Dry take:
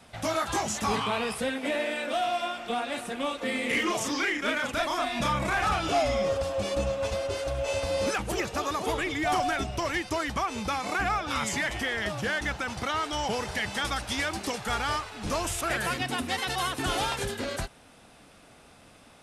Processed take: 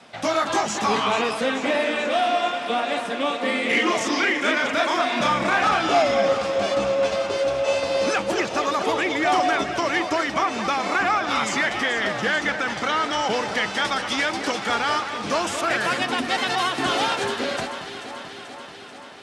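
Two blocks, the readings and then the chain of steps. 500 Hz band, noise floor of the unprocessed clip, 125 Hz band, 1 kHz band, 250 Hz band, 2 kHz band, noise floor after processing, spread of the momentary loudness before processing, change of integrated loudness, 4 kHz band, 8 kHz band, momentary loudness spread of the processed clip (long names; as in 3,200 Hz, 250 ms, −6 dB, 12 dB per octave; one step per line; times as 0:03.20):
+7.5 dB, −54 dBFS, −2.5 dB, +7.5 dB, +6.0 dB, +7.0 dB, −38 dBFS, 5 LU, +7.0 dB, +6.5 dB, +2.5 dB, 5 LU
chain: band-pass filter 210–6,100 Hz
on a send: delay that swaps between a low-pass and a high-pass 218 ms, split 2,000 Hz, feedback 82%, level −9 dB
on the sum: level +6.5 dB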